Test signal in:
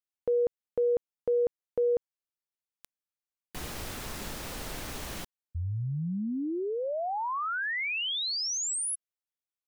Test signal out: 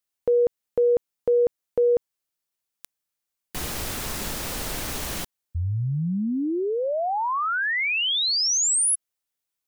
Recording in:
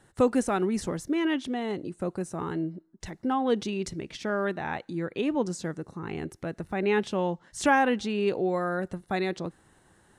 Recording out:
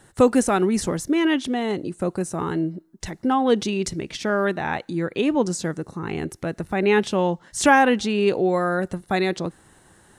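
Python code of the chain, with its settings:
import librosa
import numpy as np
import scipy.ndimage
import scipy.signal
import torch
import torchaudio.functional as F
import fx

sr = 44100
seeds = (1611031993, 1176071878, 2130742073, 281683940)

y = fx.high_shelf(x, sr, hz=5200.0, db=5.0)
y = y * 10.0 ** (6.5 / 20.0)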